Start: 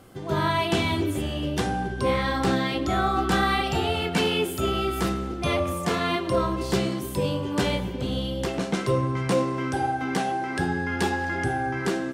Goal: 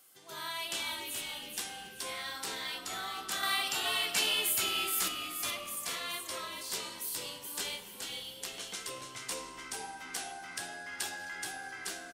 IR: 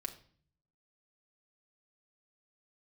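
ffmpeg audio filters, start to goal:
-filter_complex "[0:a]aderivative,asettb=1/sr,asplit=3[a][b][c];[a]atrim=end=3.434[d];[b]atrim=start=3.43:end=5.08,asetpts=PTS-STARTPTS,afade=t=in:d=0.004:c=qsin,afade=t=out:st=1.646:d=0.004:c=qsin,acontrast=29[e];[c]atrim=start=5.076[f];[d][e]acrossfade=d=0.004:c1=hsin:c2=qsin[g];[g][f]acrossfade=d=0.004:c1=qsin:c2=hsin,asplit=2[h][i];[i]asplit=4[j][k][l][m];[j]adelay=425,afreqshift=-81,volume=-5dB[n];[k]adelay=850,afreqshift=-162,volume=-13.9dB[o];[l]adelay=1275,afreqshift=-243,volume=-22.7dB[p];[m]adelay=1700,afreqshift=-324,volume=-31.6dB[q];[n][o][p][q]amix=inputs=4:normalize=0[r];[h][r]amix=inputs=2:normalize=0"

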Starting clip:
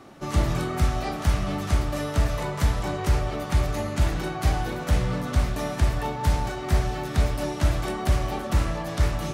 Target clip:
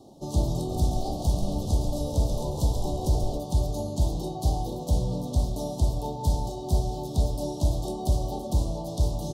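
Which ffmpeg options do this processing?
-filter_complex "[0:a]asuperstop=centerf=1800:order=8:qfactor=0.65,asplit=3[a][b][c];[a]afade=t=out:st=0.68:d=0.02[d];[b]asplit=7[e][f][g][h][i][j][k];[f]adelay=137,afreqshift=-63,volume=-7dB[l];[g]adelay=274,afreqshift=-126,volume=-12.5dB[m];[h]adelay=411,afreqshift=-189,volume=-18dB[n];[i]adelay=548,afreqshift=-252,volume=-23.5dB[o];[j]adelay=685,afreqshift=-315,volume=-29.1dB[p];[k]adelay=822,afreqshift=-378,volume=-34.6dB[q];[e][l][m][n][o][p][q]amix=inputs=7:normalize=0,afade=t=in:st=0.68:d=0.02,afade=t=out:st=3.37:d=0.02[r];[c]afade=t=in:st=3.37:d=0.02[s];[d][r][s]amix=inputs=3:normalize=0,volume=-2dB"

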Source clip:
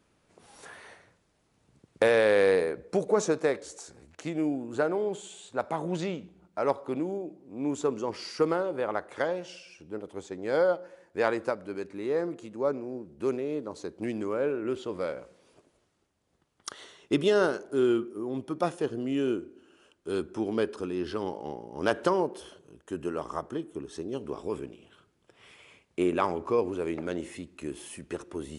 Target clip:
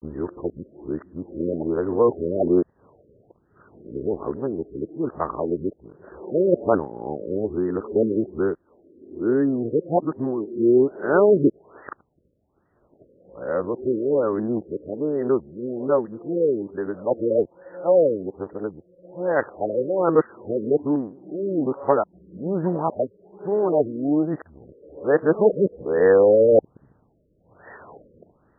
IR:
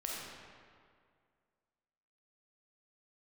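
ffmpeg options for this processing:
-af "areverse,afftfilt=real='re*lt(b*sr/1024,590*pow(2000/590,0.5+0.5*sin(2*PI*1.2*pts/sr)))':imag='im*lt(b*sr/1024,590*pow(2000/590,0.5+0.5*sin(2*PI*1.2*pts/sr)))':win_size=1024:overlap=0.75,volume=8dB"

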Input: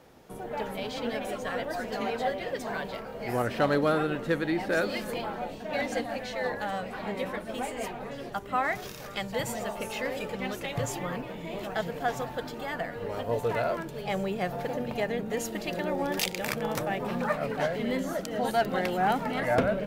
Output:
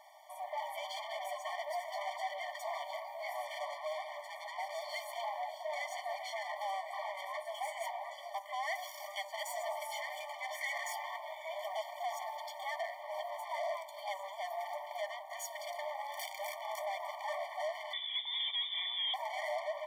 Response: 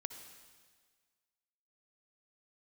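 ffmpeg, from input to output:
-filter_complex "[0:a]asettb=1/sr,asplit=3[a][b][c];[a]atrim=end=10.534[d];[b]atrim=start=10.53:end=10.93,asetpts=PTS-STARTPTS,afade=t=in:d=0.004:c=qsin,afade=t=out:st=0.396:d=0.004:c=qsin,equalizer=f=1.9k:w=1.6:g=14.5[e];[c]atrim=start=10.926[f];[d][e]acrossfade=d=0.004:c1=hsin:c2=qsin[g];[g][f]acrossfade=d=0.004:c1=qsin:c2=hsin,alimiter=limit=-22dB:level=0:latency=1:release=10,asoftclip=type=tanh:threshold=-35.5dB,asplit=2[h][i];[1:a]atrim=start_sample=2205,lowpass=4.1k[j];[i][j]afir=irnorm=-1:irlink=0,volume=-10.5dB[k];[h][k]amix=inputs=2:normalize=0,asettb=1/sr,asplit=3[l][m][n];[l]atrim=end=17.934[o];[m]atrim=start=17.93:end=19.14,asetpts=PTS-STARTPTS,afade=t=in:d=0.004:c=qsin,afade=t=out:st=1.206:d=0.004:c=qsin,lowpass=f=3.4k:t=q:w=0.5098,lowpass=f=3.4k:t=q:w=0.6013,lowpass=f=3.4k:t=q:w=0.9,lowpass=f=3.4k:t=q:w=2.563,afreqshift=-4000[p];[n]atrim=start=19.136[q];[o][p]acrossfade=d=0.004:c1=hsin:c2=qsin[r];[r][q]acrossfade=d=0.004:c1=qsin:c2=hsin,afftfilt=real='re*eq(mod(floor(b*sr/1024/600),2),1)':imag='im*eq(mod(floor(b*sr/1024/600),2),1)':win_size=1024:overlap=0.75,volume=1.5dB"

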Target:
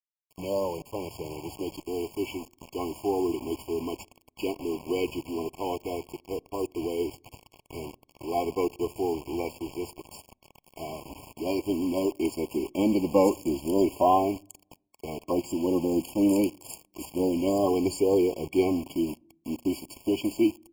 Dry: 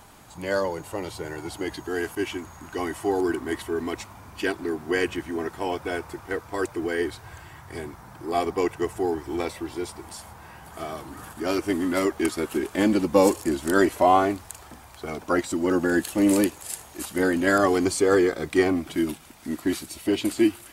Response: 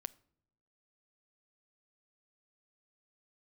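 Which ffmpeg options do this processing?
-filter_complex "[0:a]acrusher=bits=5:mix=0:aa=0.000001,asplit=2[a][b];[1:a]atrim=start_sample=2205,highshelf=f=2.5k:g=-10.5[c];[b][c]afir=irnorm=-1:irlink=0,volume=-0.5dB[d];[a][d]amix=inputs=2:normalize=0,afftfilt=real='re*eq(mod(floor(b*sr/1024/1100),2),0)':imag='im*eq(mod(floor(b*sr/1024/1100),2),0)':win_size=1024:overlap=0.75,volume=-7dB"

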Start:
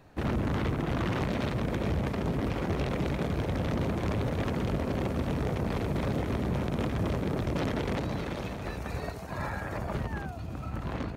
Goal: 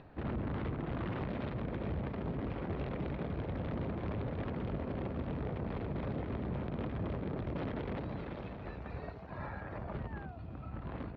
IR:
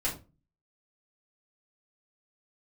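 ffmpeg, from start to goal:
-af "acompressor=mode=upward:threshold=-39dB:ratio=2.5,lowpass=f=4.3k:w=0.5412,lowpass=f=4.3k:w=1.3066,aemphasis=mode=reproduction:type=75kf,volume=-7.5dB"

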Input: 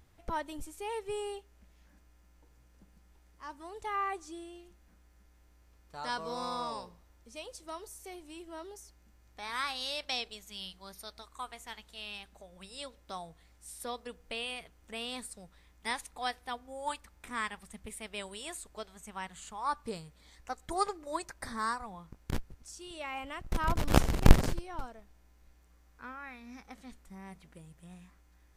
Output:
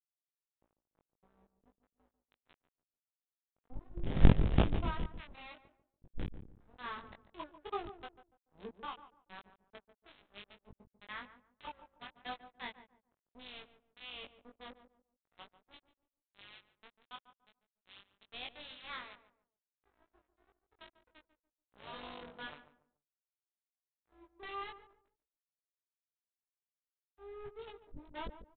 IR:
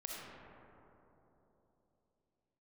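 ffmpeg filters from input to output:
-filter_complex "[0:a]areverse,acrossover=split=710[a][b];[b]acrusher=bits=5:mix=0:aa=0.000001[c];[a][c]amix=inputs=2:normalize=0,equalizer=f=1.3k:w=0.53:g=-6,aresample=8000,aeval=exprs='sgn(val(0))*max(abs(val(0))-0.00531,0)':c=same,aresample=44100,asplit=2[d][e];[e]adelay=20,volume=-2.5dB[f];[d][f]amix=inputs=2:normalize=0,asplit=2[g][h];[h]adelay=144,lowpass=f=970:p=1,volume=-10.5dB,asplit=2[i][j];[j]adelay=144,lowpass=f=970:p=1,volume=0.31,asplit=2[k][l];[l]adelay=144,lowpass=f=970:p=1,volume=0.31[m];[g][i][k][m]amix=inputs=4:normalize=0,volume=-4dB"

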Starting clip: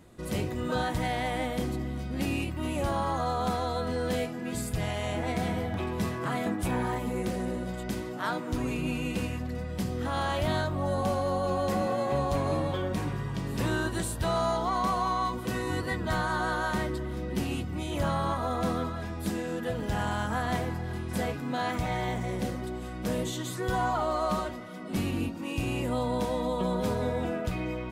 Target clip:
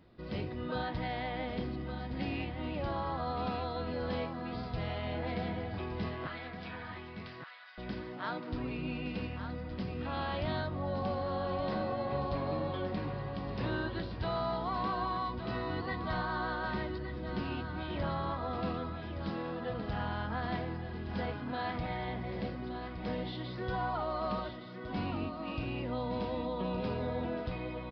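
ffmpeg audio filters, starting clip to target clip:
-filter_complex "[0:a]asettb=1/sr,asplit=3[a][b][c];[a]atrim=end=6.274[d];[b]atrim=start=6.27:end=7.78,asetpts=PTS-STARTPTS,afade=t=in:d=0.004:c=qsin,afade=t=out:st=1.506:d=0.004:c=qsin,highpass=f=1.2k:w=0.5412,highpass=f=1.2k:w=1.3066[e];[c]atrim=start=7.776[f];[d][e]acrossfade=d=0.004:c1=hsin:c2=qsin[g];[g][f]acrossfade=d=0.004:c1=qsin:c2=hsin,asplit=2[h][i];[i]aecho=0:1:1167:0.376[j];[h][j]amix=inputs=2:normalize=0,aresample=11025,aresample=44100,volume=-6.5dB"

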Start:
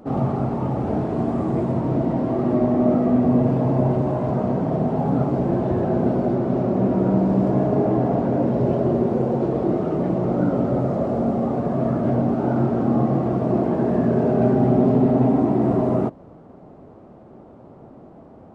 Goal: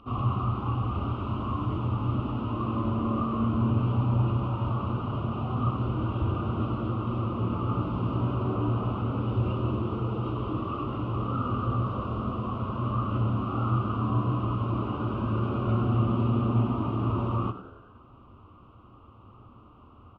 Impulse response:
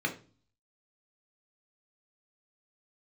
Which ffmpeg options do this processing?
-filter_complex "[0:a]asetrate=40517,aresample=44100,firequalizer=gain_entry='entry(110,0);entry(160,-20);entry(240,-10);entry(420,-14);entry(630,-18);entry(1200,11);entry(1700,-18);entry(2800,12);entry(4000,-5);entry(7100,-21)':delay=0.05:min_phase=1,asplit=6[a][b][c][d][e][f];[b]adelay=95,afreqshift=76,volume=-13.5dB[g];[c]adelay=190,afreqshift=152,volume=-19.7dB[h];[d]adelay=285,afreqshift=228,volume=-25.9dB[i];[e]adelay=380,afreqshift=304,volume=-32.1dB[j];[f]adelay=475,afreqshift=380,volume=-38.3dB[k];[a][g][h][i][j][k]amix=inputs=6:normalize=0,asplit=2[l][m];[1:a]atrim=start_sample=2205[n];[m][n]afir=irnorm=-1:irlink=0,volume=-20.5dB[o];[l][o]amix=inputs=2:normalize=0"

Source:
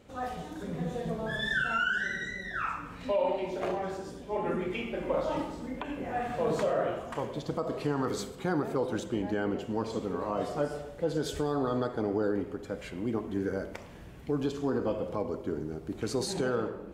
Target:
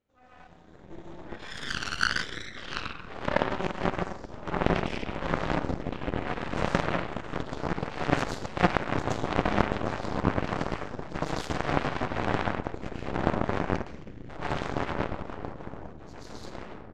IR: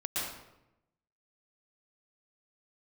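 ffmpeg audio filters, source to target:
-filter_complex "[0:a]asplit=2[a][b];[b]aecho=0:1:29|53:0.188|0.178[c];[a][c]amix=inputs=2:normalize=0,asubboost=boost=7.5:cutoff=200,aresample=16000,aeval=exprs='0.0708*(abs(mod(val(0)/0.0708+3,4)-2)-1)':c=same,aresample=44100[d];[1:a]atrim=start_sample=2205[e];[d][e]afir=irnorm=-1:irlink=0,dynaudnorm=f=210:g=17:m=7dB,equalizer=f=1.5k:t=o:w=1.8:g=2.5,aeval=exprs='0.631*(cos(1*acos(clip(val(0)/0.631,-1,1)))-cos(1*PI/2))+0.224*(cos(3*acos(clip(val(0)/0.631,-1,1)))-cos(3*PI/2))+0.0158*(cos(8*acos(clip(val(0)/0.631,-1,1)))-cos(8*PI/2))':c=same"

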